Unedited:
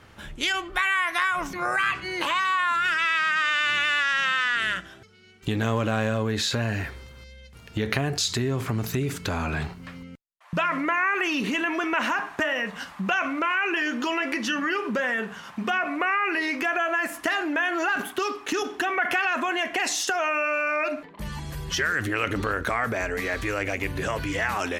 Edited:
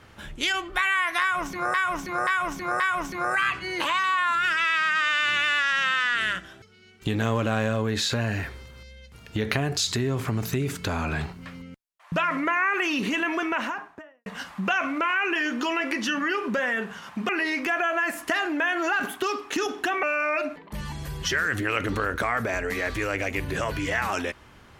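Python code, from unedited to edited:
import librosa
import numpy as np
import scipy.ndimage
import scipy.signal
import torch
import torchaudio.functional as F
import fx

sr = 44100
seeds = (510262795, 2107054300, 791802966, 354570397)

y = fx.studio_fade_out(x, sr, start_s=11.75, length_s=0.92)
y = fx.edit(y, sr, fx.repeat(start_s=1.21, length_s=0.53, count=4),
    fx.cut(start_s=15.7, length_s=0.55),
    fx.cut(start_s=18.99, length_s=1.51), tone=tone)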